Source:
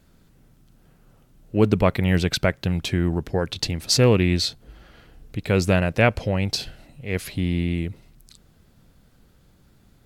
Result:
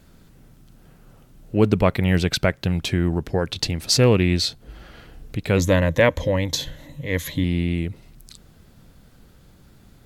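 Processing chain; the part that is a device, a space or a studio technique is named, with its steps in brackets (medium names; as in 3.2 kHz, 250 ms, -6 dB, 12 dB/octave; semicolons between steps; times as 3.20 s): parallel compression (in parallel at -1 dB: compression, threshold -37 dBFS, peak gain reduction 23 dB); 5.57–7.44 s: on the sum: rippled EQ curve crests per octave 1.1, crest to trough 12 dB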